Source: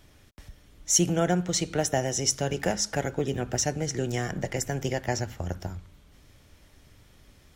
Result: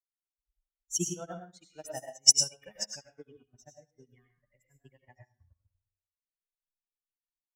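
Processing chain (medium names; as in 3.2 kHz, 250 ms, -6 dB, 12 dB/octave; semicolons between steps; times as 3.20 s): expander on every frequency bin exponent 3; 1.62–3.38 s: treble shelf 2.3 kHz +10.5 dB; reverberation RT60 0.50 s, pre-delay 60 ms, DRR 0 dB; upward expansion 2.5:1, over -40 dBFS; trim +2.5 dB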